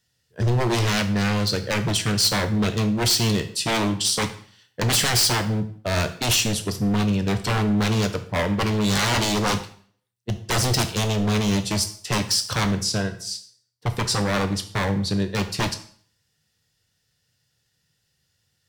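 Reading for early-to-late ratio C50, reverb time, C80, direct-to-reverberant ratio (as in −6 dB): 12.5 dB, 0.50 s, 16.0 dB, 8.0 dB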